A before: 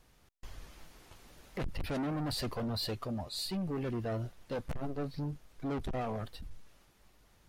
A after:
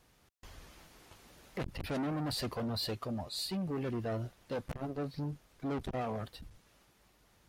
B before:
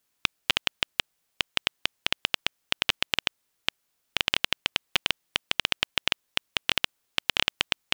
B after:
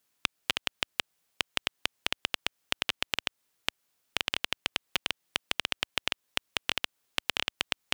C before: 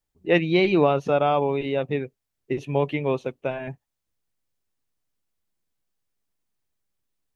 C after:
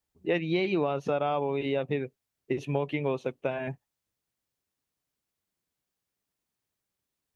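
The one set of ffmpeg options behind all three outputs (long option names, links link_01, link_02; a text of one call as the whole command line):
ffmpeg -i in.wav -af "highpass=frequency=67:poles=1,acompressor=threshold=-25dB:ratio=4" out.wav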